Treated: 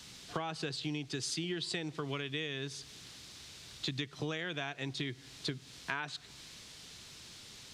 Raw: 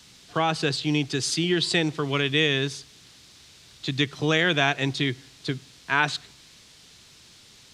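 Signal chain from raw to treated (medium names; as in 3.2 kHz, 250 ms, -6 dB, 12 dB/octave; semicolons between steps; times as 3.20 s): compression 10:1, threshold -34 dBFS, peak gain reduction 18 dB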